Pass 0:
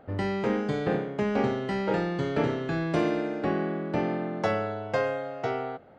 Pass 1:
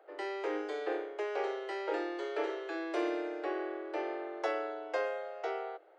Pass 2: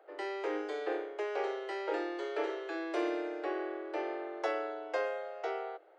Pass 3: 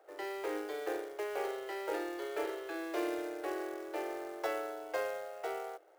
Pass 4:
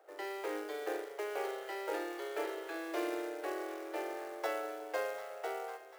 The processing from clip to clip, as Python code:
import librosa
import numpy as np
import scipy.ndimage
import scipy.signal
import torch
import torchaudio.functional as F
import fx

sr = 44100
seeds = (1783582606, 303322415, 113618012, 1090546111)

y1 = scipy.signal.sosfilt(scipy.signal.cheby1(10, 1.0, 310.0, 'highpass', fs=sr, output='sos'), x)
y1 = y1 * librosa.db_to_amplitude(-6.0)
y2 = y1
y3 = fx.quant_float(y2, sr, bits=2)
y3 = y3 * librosa.db_to_amplitude(-2.0)
y4 = fx.low_shelf(y3, sr, hz=180.0, db=-9.0)
y4 = fx.echo_split(y4, sr, split_hz=790.0, low_ms=182, high_ms=744, feedback_pct=52, wet_db=-14)